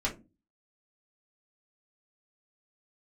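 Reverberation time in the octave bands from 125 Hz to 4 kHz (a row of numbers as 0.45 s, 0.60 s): 0.50 s, 0.45 s, 0.35 s, 0.20 s, 0.20 s, 0.15 s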